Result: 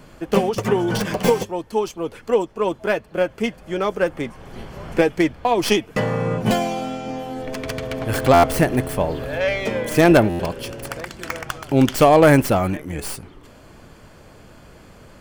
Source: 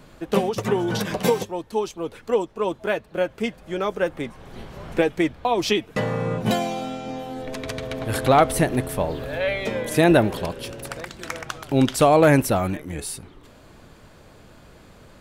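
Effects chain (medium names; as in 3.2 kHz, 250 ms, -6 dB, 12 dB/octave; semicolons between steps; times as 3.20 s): tracing distortion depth 0.11 ms; band-stop 3.8 kHz, Q 8.6; buffer glitch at 8.33/10.29 s, samples 512, times 8; trim +3 dB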